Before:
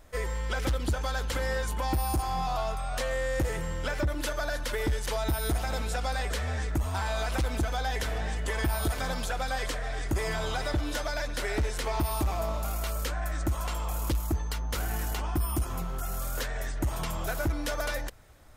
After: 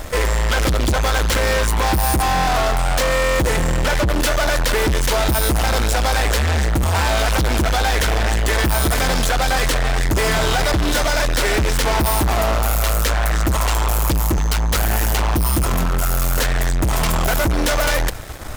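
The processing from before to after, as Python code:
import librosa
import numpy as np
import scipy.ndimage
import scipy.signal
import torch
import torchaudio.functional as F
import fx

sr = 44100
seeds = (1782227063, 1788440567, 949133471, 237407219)

y = fx.leveller(x, sr, passes=5)
y = y * 10.0 ** (6.5 / 20.0)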